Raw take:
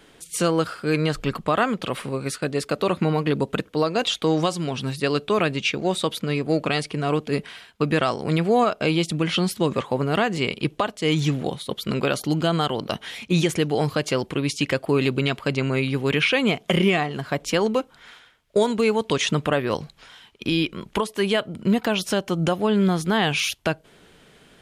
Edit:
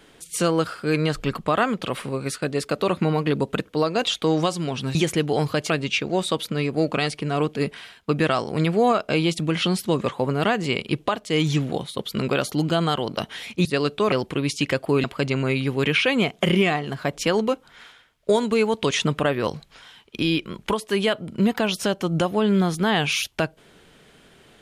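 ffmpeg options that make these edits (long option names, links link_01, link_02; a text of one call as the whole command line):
ffmpeg -i in.wav -filter_complex "[0:a]asplit=6[link_01][link_02][link_03][link_04][link_05][link_06];[link_01]atrim=end=4.952[link_07];[link_02]atrim=start=13.368:end=14.122[link_08];[link_03]atrim=start=5.418:end=13.372[link_09];[link_04]atrim=start=4.948:end=5.422[link_10];[link_05]atrim=start=14.118:end=15.042[link_11];[link_06]atrim=start=15.308[link_12];[link_07][link_08]acrossfade=duration=0.004:curve1=hsin:curve2=hsin[link_13];[link_13][link_09]acrossfade=duration=0.004:curve1=hsin:curve2=hsin[link_14];[link_14][link_10]acrossfade=duration=0.004:curve1=hsin:curve2=hsin[link_15];[link_15][link_11]acrossfade=duration=0.004:curve1=hsin:curve2=hsin[link_16];[link_16][link_12]acrossfade=duration=0.004:curve1=hsin:curve2=hsin" out.wav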